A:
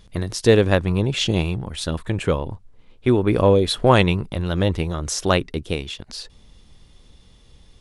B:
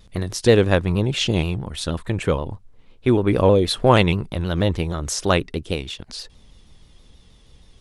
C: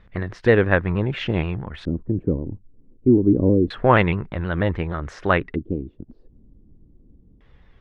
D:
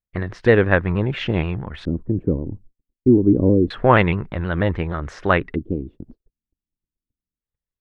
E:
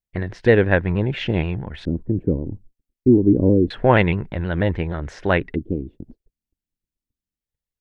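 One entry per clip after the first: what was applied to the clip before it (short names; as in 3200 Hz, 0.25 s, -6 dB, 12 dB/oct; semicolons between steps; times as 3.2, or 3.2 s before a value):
shaped vibrato saw down 6.3 Hz, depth 100 cents
LFO low-pass square 0.27 Hz 300–1800 Hz; gain -2 dB
gate -42 dBFS, range -43 dB; gain +1.5 dB
bell 1200 Hz -10.5 dB 0.35 oct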